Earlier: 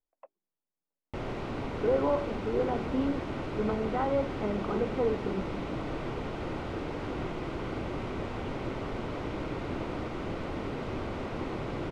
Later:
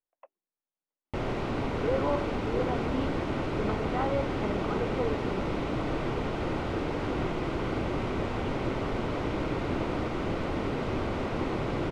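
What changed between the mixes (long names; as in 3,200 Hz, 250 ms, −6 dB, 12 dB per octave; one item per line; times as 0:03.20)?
speech: add spectral tilt +2.5 dB per octave
background +4.5 dB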